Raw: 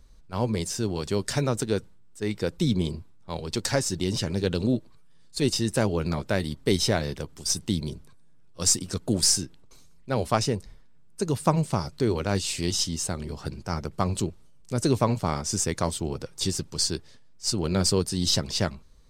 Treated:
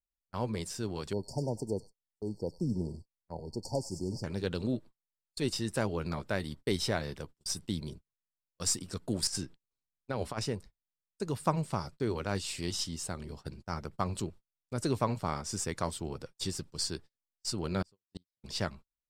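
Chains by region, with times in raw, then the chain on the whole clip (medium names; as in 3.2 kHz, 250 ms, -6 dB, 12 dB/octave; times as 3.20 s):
1.13–4.24 s: brick-wall FIR band-stop 980–4300 Hz + treble shelf 3.3 kHz -9.5 dB + feedback echo behind a high-pass 98 ms, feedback 37%, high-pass 2.1 kHz, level -4 dB
9.27–10.39 s: treble shelf 12 kHz -9 dB + compressor with a negative ratio -26 dBFS, ratio -0.5
17.82–18.43 s: treble shelf 7.9 kHz -5.5 dB + inverted gate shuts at -17 dBFS, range -34 dB
whole clip: band-stop 6.3 kHz, Q 13; dynamic bell 1.3 kHz, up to +4 dB, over -41 dBFS, Q 0.82; gate -37 dBFS, range -36 dB; trim -8.5 dB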